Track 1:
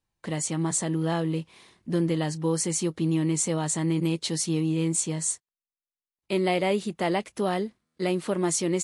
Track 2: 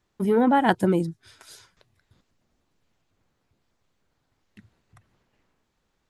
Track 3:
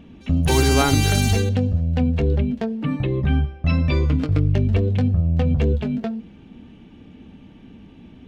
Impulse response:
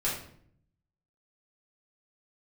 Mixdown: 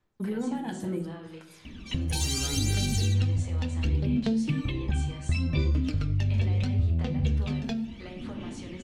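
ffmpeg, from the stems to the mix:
-filter_complex "[0:a]acrossover=split=560 4300:gain=0.224 1 0.126[a][b][c];[a][b][c]amix=inputs=3:normalize=0,acompressor=threshold=-38dB:ratio=6,volume=-9dB,asplit=2[d][e];[e]volume=-5dB[f];[1:a]volume=-13.5dB,asplit=2[g][h];[h]volume=-7.5dB[i];[2:a]equalizer=f=5.6k:w=0.42:g=11,acompressor=threshold=-21dB:ratio=6,flanger=delay=3:depth=6:regen=-42:speed=0.96:shape=sinusoidal,adelay=1650,volume=-0.5dB,asplit=2[j][k];[k]volume=-15dB[l];[g][j]amix=inputs=2:normalize=0,aphaser=in_gain=1:out_gain=1:delay=1.2:decay=0.7:speed=0.71:type=sinusoidal,acompressor=threshold=-27dB:ratio=2,volume=0dB[m];[3:a]atrim=start_sample=2205[n];[f][i][l]amix=inputs=3:normalize=0[o];[o][n]afir=irnorm=-1:irlink=0[p];[d][m][p]amix=inputs=3:normalize=0,acrossover=split=420|3000[q][r][s];[r]acompressor=threshold=-42dB:ratio=6[t];[q][t][s]amix=inputs=3:normalize=0"

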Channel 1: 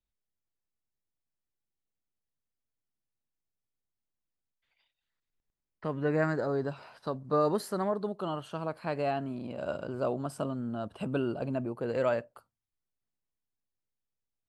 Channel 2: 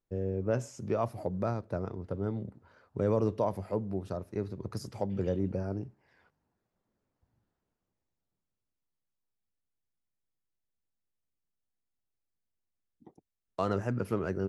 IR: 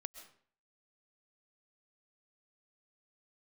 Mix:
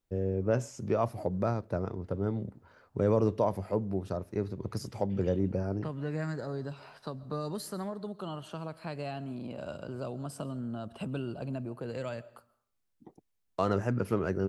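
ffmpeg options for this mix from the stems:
-filter_complex "[0:a]acrossover=split=190|3000[a][b][c];[b]acompressor=threshold=-41dB:ratio=3[d];[a][d][c]amix=inputs=3:normalize=0,volume=-2dB,asplit=2[e][f];[f]volume=-3.5dB[g];[1:a]volume=2dB[h];[2:a]atrim=start_sample=2205[i];[g][i]afir=irnorm=-1:irlink=0[j];[e][h][j]amix=inputs=3:normalize=0"

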